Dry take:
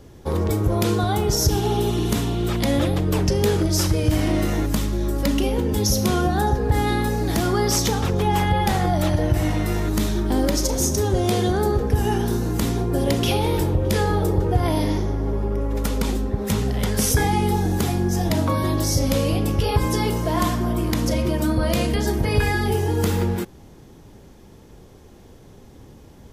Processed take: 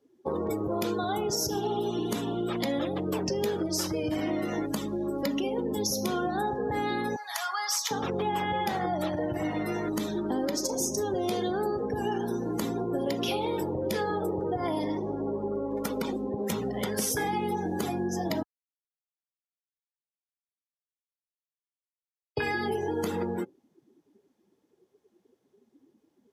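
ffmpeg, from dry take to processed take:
-filter_complex "[0:a]asettb=1/sr,asplit=3[s0][s1][s2];[s0]atrim=end=7.164[s3];[s1]atrim=start=7.16:end=7.91,asetpts=PTS-STARTPTS,afade=t=in:d=0.004:c=qsin,afade=t=out:st=0.746:d=0.004:c=qsin,highpass=f=880:w=0.5412,highpass=f=880:w=1.3066[s4];[s2]atrim=start=7.906[s5];[s3][s4]acrossfade=d=0.004:c1=hsin:c2=qsin[s6];[s6][s5]acrossfade=d=0.004:c1=qsin:c2=hsin,asplit=3[s7][s8][s9];[s7]atrim=end=18.43,asetpts=PTS-STARTPTS,afade=t=out:st=18.426:d=0.004:c=hsin[s10];[s8]atrim=start=18.43:end=22.37,asetpts=PTS-STARTPTS,volume=0[s11];[s9]atrim=start=22.37,asetpts=PTS-STARTPTS,afade=t=in:d=0.004:c=hsin[s12];[s10][s11][s12]concat=n=3:v=0:a=1,highpass=230,afftdn=nr=25:nf=-34,acompressor=threshold=0.0398:ratio=3"

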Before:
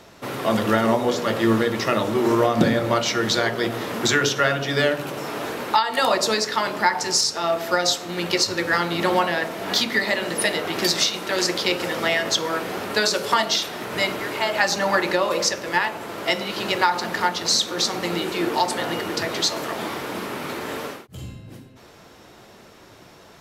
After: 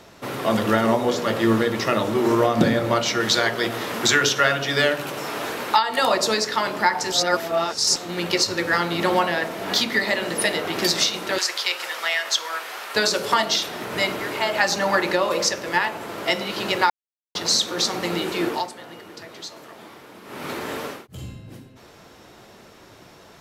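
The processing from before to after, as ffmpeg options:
-filter_complex "[0:a]asettb=1/sr,asplit=3[s0][s1][s2];[s0]atrim=end=3.204[s3];[s1]atrim=start=3.2:end=5.78,asetpts=PTS-STARTPTS,afade=t=in:d=0.004:c=qsin,afade=t=out:st=2.576:d=0.004:c=qsin,tiltshelf=f=660:g=-3[s4];[s2]atrim=start=5.776[s5];[s3][s4]acrossfade=d=0.004:c1=hsin:c2=qsin[s6];[s6][s5]acrossfade=d=0.004:c1=qsin:c2=hsin,asettb=1/sr,asplit=3[s7][s8][s9];[s7]atrim=end=11.384[s10];[s8]atrim=start=11.38:end=12.95,asetpts=PTS-STARTPTS,afade=t=in:d=0.004:c=qsin,afade=t=out:st=1.566:d=0.004:c=qsin,highpass=1000[s11];[s9]atrim=start=12.946[s12];[s10][s11]acrossfade=d=0.004:c1=hsin:c2=qsin[s13];[s13][s12]acrossfade=d=0.004:c1=qsin:c2=hsin,asplit=7[s14][s15][s16][s17][s18][s19][s20];[s14]atrim=end=7.122[s21];[s15]atrim=start=7.118:end=7.962,asetpts=PTS-STARTPTS,areverse[s22];[s16]atrim=start=7.958:end=16.9,asetpts=PTS-STARTPTS,afade=t=out:st=8.938:d=0.004:c=hsin[s23];[s17]atrim=start=16.9:end=17.35,asetpts=PTS-STARTPTS,volume=0[s24];[s18]atrim=start=17.35:end=18.72,asetpts=PTS-STARTPTS,afade=t=in:d=0.004:c=hsin,afade=t=out:st=1.11:d=0.26:silence=0.188365[s25];[s19]atrim=start=18.72:end=20.24,asetpts=PTS-STARTPTS,volume=0.188[s26];[s20]atrim=start=20.24,asetpts=PTS-STARTPTS,afade=t=in:d=0.26:silence=0.188365[s27];[s21][s22]acrossfade=d=0.004:c1=hsin:c2=hsin[s28];[s23][s24][s25][s26][s27]concat=n=5:v=0:a=1[s29];[s28][s29]acrossfade=d=0.004:c1=hsin:c2=hsin"

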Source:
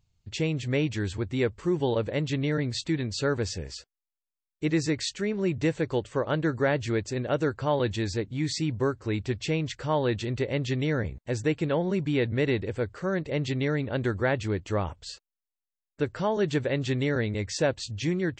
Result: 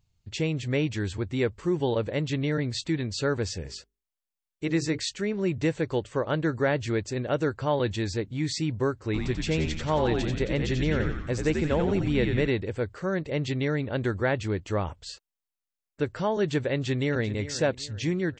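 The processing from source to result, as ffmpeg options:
-filter_complex "[0:a]asplit=3[s0][s1][s2];[s0]afade=t=out:st=3.62:d=0.02[s3];[s1]bandreject=f=50:t=h:w=6,bandreject=f=100:t=h:w=6,bandreject=f=150:t=h:w=6,bandreject=f=200:t=h:w=6,bandreject=f=250:t=h:w=6,bandreject=f=300:t=h:w=6,bandreject=f=350:t=h:w=6,bandreject=f=400:t=h:w=6,bandreject=f=450:t=h:w=6,afade=t=in:st=3.62:d=0.02,afade=t=out:st=4.97:d=0.02[s4];[s2]afade=t=in:st=4.97:d=0.02[s5];[s3][s4][s5]amix=inputs=3:normalize=0,asplit=3[s6][s7][s8];[s6]afade=t=out:st=9.13:d=0.02[s9];[s7]asplit=9[s10][s11][s12][s13][s14][s15][s16][s17][s18];[s11]adelay=89,afreqshift=-82,volume=0.596[s19];[s12]adelay=178,afreqshift=-164,volume=0.339[s20];[s13]adelay=267,afreqshift=-246,volume=0.193[s21];[s14]adelay=356,afreqshift=-328,volume=0.111[s22];[s15]adelay=445,afreqshift=-410,volume=0.0631[s23];[s16]adelay=534,afreqshift=-492,volume=0.0359[s24];[s17]adelay=623,afreqshift=-574,volume=0.0204[s25];[s18]adelay=712,afreqshift=-656,volume=0.0116[s26];[s10][s19][s20][s21][s22][s23][s24][s25][s26]amix=inputs=9:normalize=0,afade=t=in:st=9.13:d=0.02,afade=t=out:st=12.46:d=0.02[s27];[s8]afade=t=in:st=12.46:d=0.02[s28];[s9][s27][s28]amix=inputs=3:normalize=0,asplit=2[s29][s30];[s30]afade=t=in:st=16.73:d=0.01,afade=t=out:st=17.35:d=0.01,aecho=0:1:390|780|1170|1560:0.199526|0.0798105|0.0319242|0.0127697[s31];[s29][s31]amix=inputs=2:normalize=0"

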